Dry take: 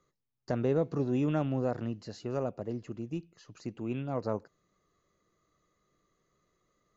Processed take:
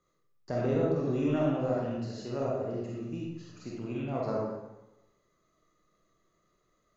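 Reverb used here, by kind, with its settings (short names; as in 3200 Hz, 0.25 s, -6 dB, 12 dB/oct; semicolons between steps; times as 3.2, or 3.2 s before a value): digital reverb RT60 0.98 s, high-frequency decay 0.8×, pre-delay 5 ms, DRR -5 dB; gain -4 dB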